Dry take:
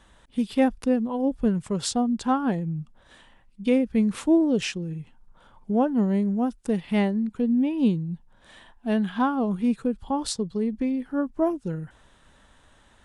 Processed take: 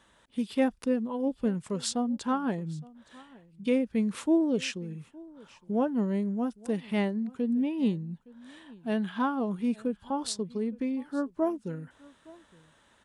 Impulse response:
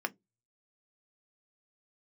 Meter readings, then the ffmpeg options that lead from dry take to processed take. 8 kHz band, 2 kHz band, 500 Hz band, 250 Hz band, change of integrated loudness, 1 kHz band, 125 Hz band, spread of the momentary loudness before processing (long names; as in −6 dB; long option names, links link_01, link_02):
−3.5 dB, −3.5 dB, −4.0 dB, −5.5 dB, −5.0 dB, −5.5 dB, −6.5 dB, 11 LU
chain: -filter_complex "[0:a]highpass=frequency=180:poles=1,bandreject=frequency=760:width=12,asplit=2[link_01][link_02];[link_02]aecho=0:1:865:0.0708[link_03];[link_01][link_03]amix=inputs=2:normalize=0,volume=-3.5dB"